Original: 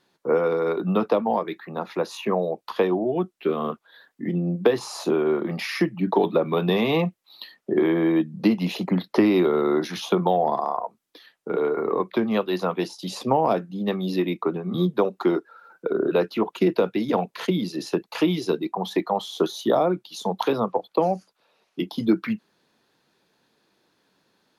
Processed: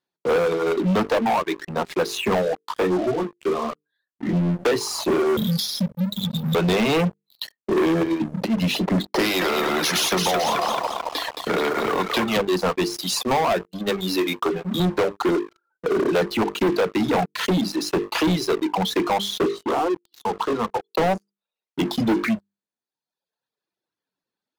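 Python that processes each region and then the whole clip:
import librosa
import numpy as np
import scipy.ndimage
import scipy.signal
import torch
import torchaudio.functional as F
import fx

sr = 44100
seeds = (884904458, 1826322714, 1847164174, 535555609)

y = fx.chain(x, sr, fx.high_shelf(hz=2500.0, db=-4.0),
    fx.hum_notches(base_hz=50, count=5),
    fx.detune_double(cents=16), at=(2.65, 4.33))
y = fx.chain(y, sr, fx.brickwall_bandstop(low_hz=230.0, high_hz=3200.0),
    fx.high_shelf(hz=8900.0, db=8.5),
    fx.band_squash(depth_pct=100), at=(5.37, 6.55))
y = fx.chain(y, sr, fx.highpass(hz=120.0, slope=12),
    fx.over_compress(threshold_db=-22.0, ratio=-0.5), at=(8.01, 8.57))
y = fx.chain(y, sr, fx.highpass(hz=160.0, slope=12),
    fx.echo_thinned(ms=219, feedback_pct=49, hz=510.0, wet_db=-5),
    fx.spectral_comp(ratio=2.0), at=(9.19, 12.37))
y = fx.chain(y, sr, fx.highpass(hz=350.0, slope=6),
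    fx.high_shelf(hz=6100.0, db=9.0), at=(12.94, 14.8))
y = fx.chain(y, sr, fx.lowpass(hz=2800.0, slope=12),
    fx.fixed_phaser(hz=600.0, stages=6),
    fx.transformer_sat(knee_hz=1200.0), at=(19.46, 20.88))
y = fx.dereverb_blind(y, sr, rt60_s=1.5)
y = fx.hum_notches(y, sr, base_hz=50, count=9)
y = fx.leveller(y, sr, passes=5)
y = F.gain(torch.from_numpy(y), -8.5).numpy()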